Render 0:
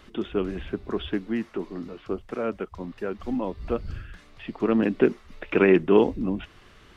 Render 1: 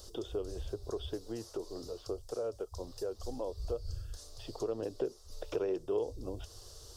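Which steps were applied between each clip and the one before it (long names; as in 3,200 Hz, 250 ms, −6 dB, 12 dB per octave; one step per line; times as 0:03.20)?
drawn EQ curve 110 Hz 0 dB, 200 Hz −23 dB, 480 Hz +1 dB, 1,400 Hz −14 dB, 2,200 Hz −26 dB, 4,900 Hz +12 dB
downward compressor 2.5 to 1, threshold −39 dBFS, peak gain reduction 15 dB
level +2 dB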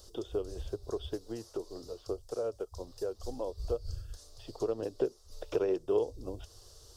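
expander for the loud parts 1.5 to 1, over −46 dBFS
level +5 dB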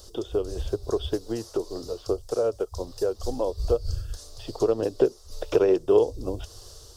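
automatic gain control gain up to 3 dB
level +7 dB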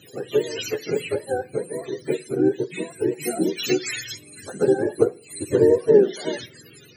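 frequency axis turned over on the octave scale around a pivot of 420 Hz
on a send at −13 dB: convolution reverb RT60 0.45 s, pre-delay 3 ms
on the sum: level +6 dB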